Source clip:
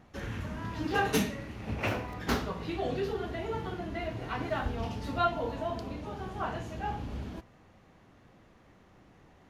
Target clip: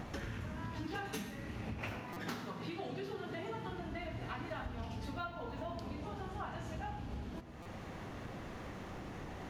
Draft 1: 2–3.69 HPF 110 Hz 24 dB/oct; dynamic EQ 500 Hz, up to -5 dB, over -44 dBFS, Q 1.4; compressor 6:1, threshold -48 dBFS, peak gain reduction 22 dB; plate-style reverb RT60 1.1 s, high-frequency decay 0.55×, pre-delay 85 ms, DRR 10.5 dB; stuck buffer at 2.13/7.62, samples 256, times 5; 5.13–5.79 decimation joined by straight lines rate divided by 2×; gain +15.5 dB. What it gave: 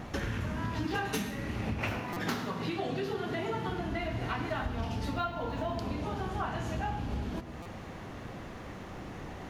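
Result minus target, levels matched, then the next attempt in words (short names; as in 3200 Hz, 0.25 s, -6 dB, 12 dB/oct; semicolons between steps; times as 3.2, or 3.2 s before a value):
compressor: peak gain reduction -8.5 dB
2–3.69 HPF 110 Hz 24 dB/oct; dynamic EQ 500 Hz, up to -5 dB, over -44 dBFS, Q 1.4; compressor 6:1, threshold -58 dBFS, peak gain reduction 30.5 dB; plate-style reverb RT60 1.1 s, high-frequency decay 0.55×, pre-delay 85 ms, DRR 10.5 dB; stuck buffer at 2.13/7.62, samples 256, times 5; 5.13–5.79 decimation joined by straight lines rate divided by 2×; gain +15.5 dB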